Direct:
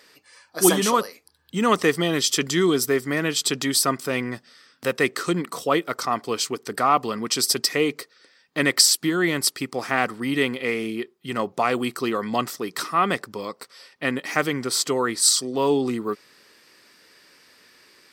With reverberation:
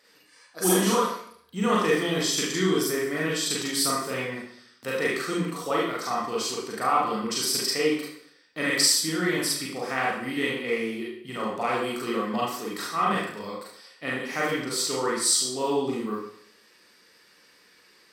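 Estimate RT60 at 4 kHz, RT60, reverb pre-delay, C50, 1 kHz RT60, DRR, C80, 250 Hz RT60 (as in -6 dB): 0.60 s, 0.65 s, 36 ms, 1.5 dB, 0.60 s, -5.0 dB, 5.0 dB, 0.65 s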